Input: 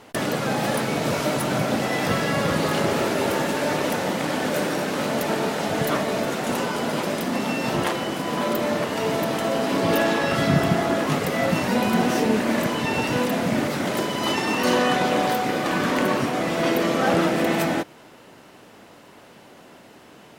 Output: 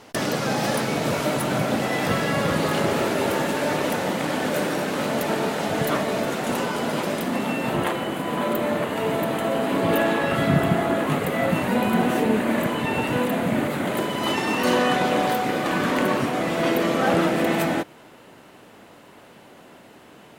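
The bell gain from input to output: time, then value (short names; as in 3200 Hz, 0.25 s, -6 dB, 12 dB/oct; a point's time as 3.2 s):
bell 5400 Hz 0.62 oct
0.68 s +4.5 dB
1.18 s -3 dB
7.12 s -3 dB
7.71 s -14 dB
13.85 s -14 dB
14.43 s -4.5 dB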